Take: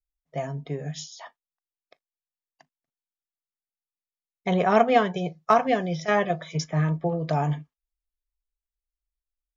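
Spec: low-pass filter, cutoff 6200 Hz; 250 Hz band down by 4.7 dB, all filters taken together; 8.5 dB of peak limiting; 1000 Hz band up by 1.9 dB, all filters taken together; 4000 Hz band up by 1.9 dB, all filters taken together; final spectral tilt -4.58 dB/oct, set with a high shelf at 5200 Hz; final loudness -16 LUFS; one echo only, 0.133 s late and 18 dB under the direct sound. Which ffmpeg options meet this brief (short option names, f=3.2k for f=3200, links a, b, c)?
-af "lowpass=6.2k,equalizer=f=250:t=o:g=-8,equalizer=f=1k:t=o:g=3.5,equalizer=f=4k:t=o:g=6,highshelf=f=5.2k:g=-5.5,alimiter=limit=-14dB:level=0:latency=1,aecho=1:1:133:0.126,volume=12dB"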